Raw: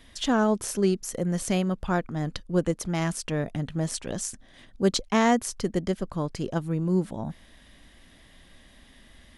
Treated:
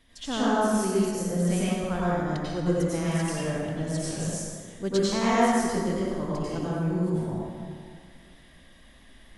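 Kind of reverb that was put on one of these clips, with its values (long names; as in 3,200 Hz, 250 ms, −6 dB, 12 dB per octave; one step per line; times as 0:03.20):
dense smooth reverb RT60 1.9 s, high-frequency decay 0.6×, pre-delay 80 ms, DRR −9 dB
level −9 dB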